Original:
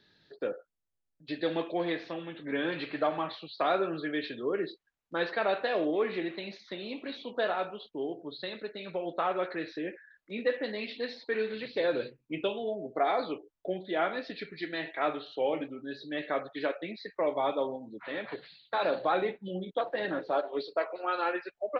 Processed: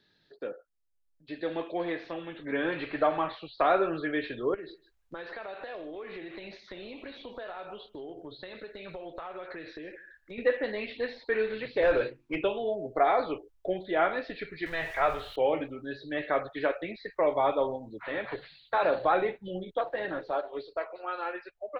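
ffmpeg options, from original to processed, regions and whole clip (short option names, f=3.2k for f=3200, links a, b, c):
-filter_complex "[0:a]asettb=1/sr,asplit=3[a][b][c];[a]atrim=end=4.544[d];[b]atrim=start=4.54:end=10.38,asetpts=PTS-STARTPTS,afade=t=in:d=0.004:c=qsin,afade=t=out:st=5.836:d=0.004:c=qsin,acompressor=threshold=-40dB:ratio=10:attack=3.2:release=140:knee=1:detection=peak,aecho=1:1:151:0.075,atrim=end_sample=257544[e];[c]atrim=start=10.376[f];[d][e]acrossfade=d=0.004:c1=hsin:c2=qsin[g];[g][f]acrossfade=d=0.004:c1=qsin:c2=hsin,asettb=1/sr,asplit=3[h][i][j];[h]atrim=end=11.824[k];[i]atrim=start=11.82:end=12.44,asetpts=PTS-STARTPTS,afade=t=in:d=0.004:c=qsin,afade=t=out:st=0.616:d=0.004:c=qsin,bandreject=f=50:t=h:w=6,bandreject=f=100:t=h:w=6,bandreject=f=150:t=h:w=6,bandreject=f=200:t=h:w=6,bandreject=f=250:t=h:w=6,bandreject=f=300:t=h:w=6,bandreject=f=350:t=h:w=6,asplit=2[l][m];[m]highpass=f=720:p=1,volume=15dB,asoftclip=type=tanh:threshold=-19dB[n];[l][n]amix=inputs=2:normalize=0,lowpass=f=2.1k:p=1,volume=-6dB[o];[j]atrim=start=12.436[p];[k][o]acrossfade=d=0.004:c1=hsin:c2=qsin[q];[q][p]acrossfade=d=0.004:c1=qsin:c2=hsin,asettb=1/sr,asplit=3[r][s][t];[r]atrim=end=14.664[u];[s]atrim=start=14.66:end=15.36,asetpts=PTS-STARTPTS,afade=t=in:d=0.004:c=qsin,afade=t=out:st=0.696:d=0.004:c=qsin,aeval=exprs='val(0)+0.5*0.00841*sgn(val(0))':c=same,equalizer=f=310:t=o:w=0.44:g=-12.5[v];[t]atrim=start=15.356[w];[u][v]acrossfade=d=0.004:c1=hsin:c2=qsin[x];[x][w]acrossfade=d=0.004:c1=qsin:c2=hsin,dynaudnorm=f=200:g=21:m=8dB,asubboost=boost=11:cutoff=60,acrossover=split=2800[y][z];[z]acompressor=threshold=-52dB:ratio=4:attack=1:release=60[aa];[y][aa]amix=inputs=2:normalize=0,volume=-3.5dB"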